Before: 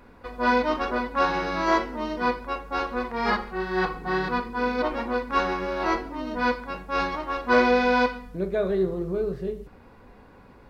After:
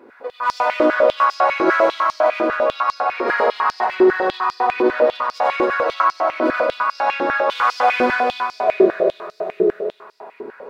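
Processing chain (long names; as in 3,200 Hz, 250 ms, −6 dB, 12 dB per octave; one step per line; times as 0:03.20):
high-shelf EQ 2,300 Hz −8 dB
in parallel at 0 dB: downward compressor 4 to 1, threshold −40 dBFS, peak gain reduction 20 dB
on the sum: hard clipping −16.5 dBFS, distortion −17 dB
on a send: echo machine with several playback heads 89 ms, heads all three, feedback 63%, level −9 dB
on the sum: comb and all-pass reverb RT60 1.4 s, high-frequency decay 0.45×, pre-delay 55 ms, DRR −4.5 dB
high-pass on a step sequencer 10 Hz 350–5,000 Hz
level −3 dB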